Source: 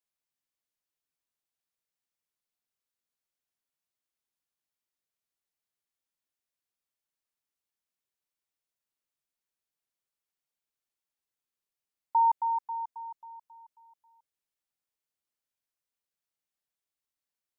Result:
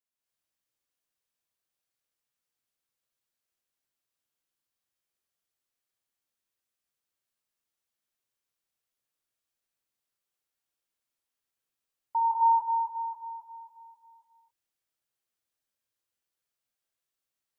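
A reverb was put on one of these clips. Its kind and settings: non-linear reverb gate 0.31 s rising, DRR -6.5 dB; gain -4.5 dB

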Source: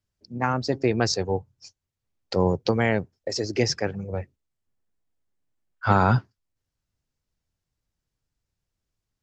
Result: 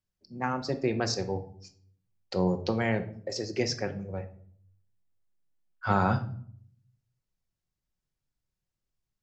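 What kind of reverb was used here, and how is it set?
shoebox room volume 790 m³, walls furnished, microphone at 1 m; gain -6.5 dB

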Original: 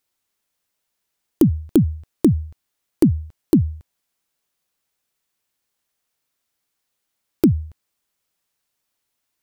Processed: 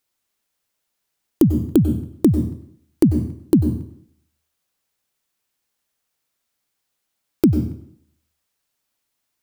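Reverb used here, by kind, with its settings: plate-style reverb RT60 0.64 s, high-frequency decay 0.85×, pre-delay 85 ms, DRR 8.5 dB

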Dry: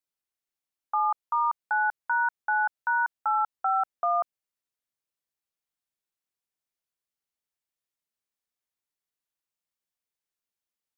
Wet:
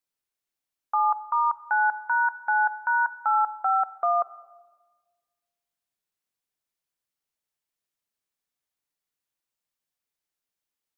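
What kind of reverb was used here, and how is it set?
shoebox room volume 1200 m³, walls mixed, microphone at 0.35 m; gain +2 dB

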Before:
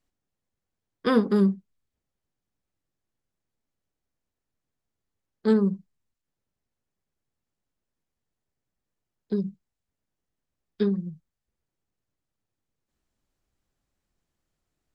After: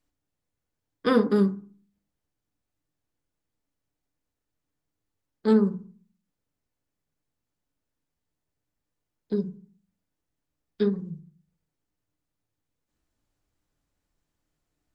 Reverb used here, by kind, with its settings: FDN reverb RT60 0.43 s, low-frequency decay 1.45×, high-frequency decay 0.4×, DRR 7.5 dB

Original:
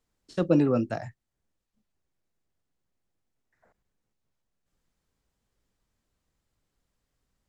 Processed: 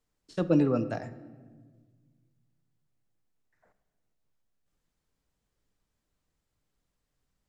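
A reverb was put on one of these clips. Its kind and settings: shoebox room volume 1500 m³, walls mixed, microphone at 0.43 m; gain -2.5 dB

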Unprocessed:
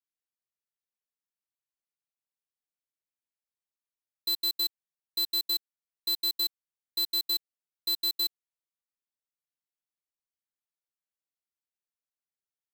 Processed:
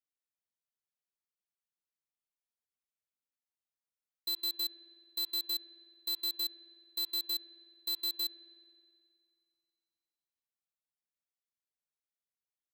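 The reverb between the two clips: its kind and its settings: spring tank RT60 2.3 s, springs 53 ms, chirp 40 ms, DRR 13.5 dB; gain -6 dB

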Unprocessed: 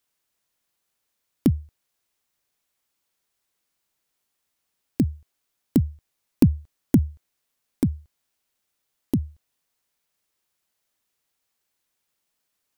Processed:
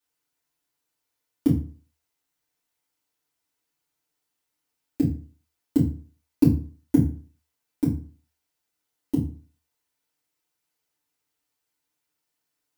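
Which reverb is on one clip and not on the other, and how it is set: FDN reverb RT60 0.39 s, low-frequency decay 1×, high-frequency decay 0.75×, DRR -8.5 dB; gain -11.5 dB

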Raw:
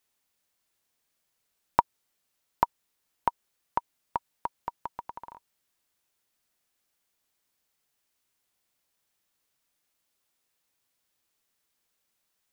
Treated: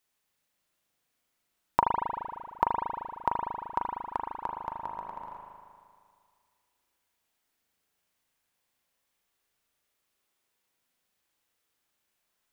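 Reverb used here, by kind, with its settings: spring tank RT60 2.1 s, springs 38 ms, chirp 55 ms, DRR -1 dB; gain -2 dB

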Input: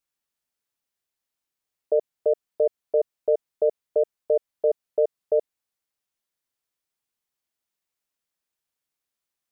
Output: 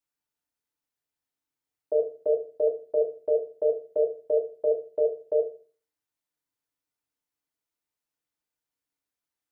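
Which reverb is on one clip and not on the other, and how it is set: FDN reverb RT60 0.39 s, low-frequency decay 1.4×, high-frequency decay 0.35×, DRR -0.5 dB; gain -6 dB

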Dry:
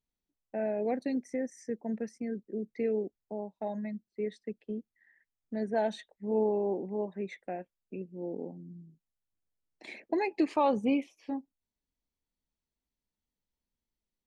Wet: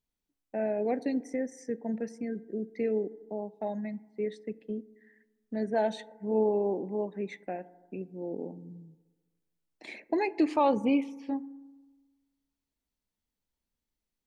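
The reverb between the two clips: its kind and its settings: FDN reverb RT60 1.3 s, low-frequency decay 1.05×, high-frequency decay 0.25×, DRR 17 dB; gain +1.5 dB

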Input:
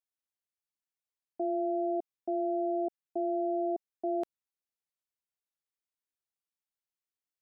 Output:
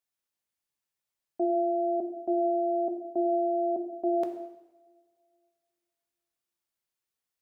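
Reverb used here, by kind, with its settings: two-slope reverb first 0.96 s, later 2.5 s, from -21 dB, DRR 4 dB; gain +4 dB

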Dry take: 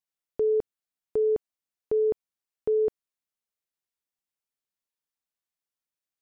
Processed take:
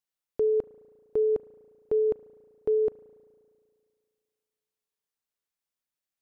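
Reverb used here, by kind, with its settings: spring tank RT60 2.2 s, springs 35 ms, chirp 40 ms, DRR 16.5 dB

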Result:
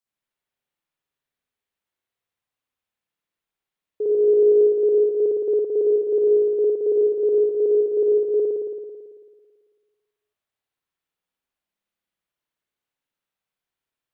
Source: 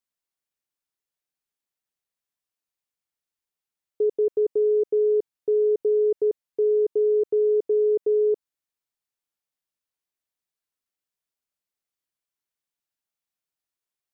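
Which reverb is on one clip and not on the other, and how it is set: spring tank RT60 1.7 s, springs 55 ms, chirp 30 ms, DRR -8.5 dB; gain -3 dB

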